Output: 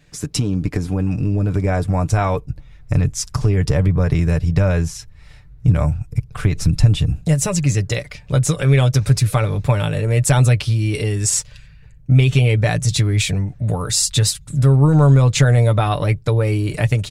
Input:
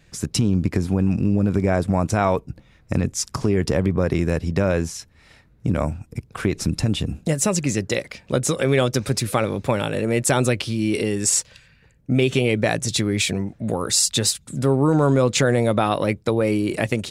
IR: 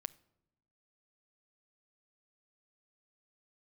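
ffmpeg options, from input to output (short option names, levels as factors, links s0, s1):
-af "asubboost=boost=11:cutoff=84,aecho=1:1:6.8:0.48"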